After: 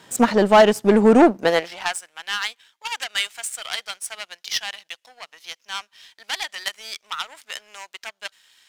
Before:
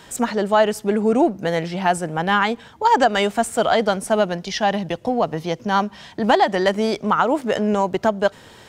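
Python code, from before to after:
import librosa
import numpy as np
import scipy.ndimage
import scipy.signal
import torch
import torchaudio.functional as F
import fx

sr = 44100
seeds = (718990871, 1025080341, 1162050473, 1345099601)

y = fx.fold_sine(x, sr, drive_db=4, ceiling_db=-5.0)
y = fx.filter_sweep_highpass(y, sr, from_hz=120.0, to_hz=2400.0, start_s=1.17, end_s=2.03, q=0.85)
y = fx.power_curve(y, sr, exponent=1.4)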